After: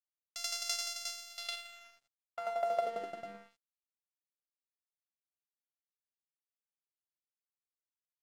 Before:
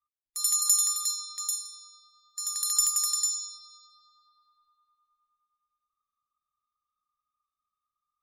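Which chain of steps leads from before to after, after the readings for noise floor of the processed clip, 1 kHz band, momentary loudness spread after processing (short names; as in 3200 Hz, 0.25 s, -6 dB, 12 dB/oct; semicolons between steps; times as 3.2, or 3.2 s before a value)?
under -85 dBFS, +4.5 dB, 16 LU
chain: sample sorter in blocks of 64 samples; compressor 1.5:1, threshold -41 dBFS, peak gain reduction 8.5 dB; band-pass sweep 5500 Hz -> 260 Hz, 1.25–3.27; crossover distortion -59.5 dBFS; gain +6.5 dB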